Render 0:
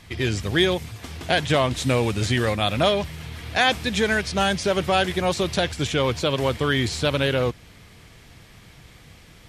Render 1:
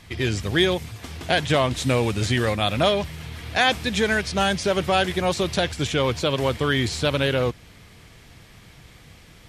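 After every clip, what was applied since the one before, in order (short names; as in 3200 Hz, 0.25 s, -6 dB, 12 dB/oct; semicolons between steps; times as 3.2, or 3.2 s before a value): nothing audible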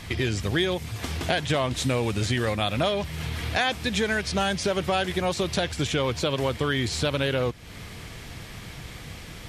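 compressor 2.5:1, threshold -36 dBFS, peak gain reduction 14.5 dB; gain +8 dB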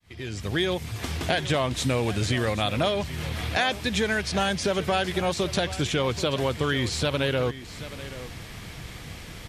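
opening faded in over 0.69 s; echo 0.781 s -15 dB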